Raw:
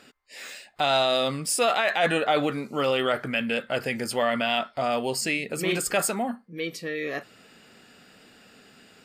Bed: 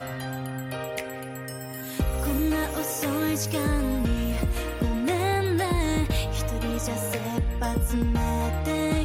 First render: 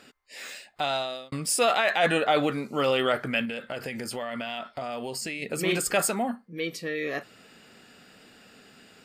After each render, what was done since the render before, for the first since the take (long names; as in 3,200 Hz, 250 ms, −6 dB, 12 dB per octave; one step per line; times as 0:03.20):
0:00.56–0:01.32: fade out
0:03.45–0:05.42: downward compressor 5 to 1, threshold −30 dBFS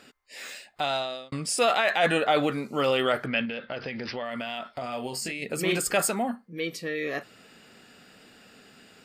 0:01.00–0:01.58: low-pass filter 8,700 Hz
0:03.26–0:04.25: bad sample-rate conversion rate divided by 4×, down none, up filtered
0:04.81–0:05.32: double-tracking delay 24 ms −5.5 dB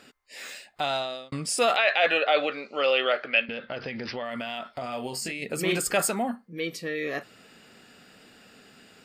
0:01.76–0:03.49: loudspeaker in its box 480–5,000 Hz, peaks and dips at 560 Hz +5 dB, 950 Hz −6 dB, 2,600 Hz +7 dB, 4,400 Hz +4 dB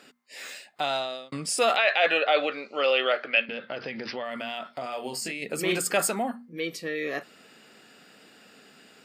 high-pass filter 160 Hz 12 dB per octave
mains-hum notches 60/120/180/240 Hz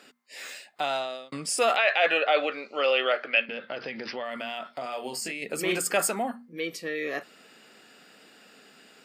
high-pass filter 190 Hz 6 dB per octave
dynamic equaliser 3,900 Hz, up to −5 dB, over −46 dBFS, Q 4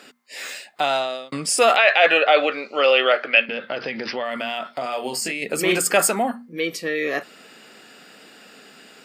level +7.5 dB
brickwall limiter −3 dBFS, peak gain reduction 0.5 dB